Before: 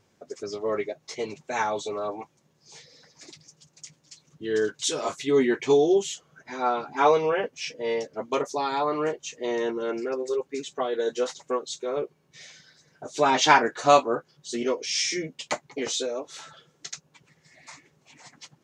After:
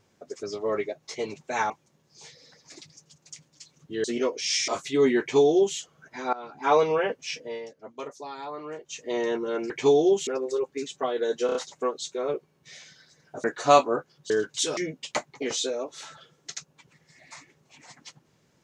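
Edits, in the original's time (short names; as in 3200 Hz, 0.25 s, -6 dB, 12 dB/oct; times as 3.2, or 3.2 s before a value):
1.7–2.21 cut
4.55–5.02 swap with 14.49–15.13
5.54–6.11 copy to 10.04
6.67–7.14 fade in, from -20 dB
7.71–9.33 dip -11 dB, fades 0.22 s
11.23 stutter 0.03 s, 4 plays
13.12–13.63 cut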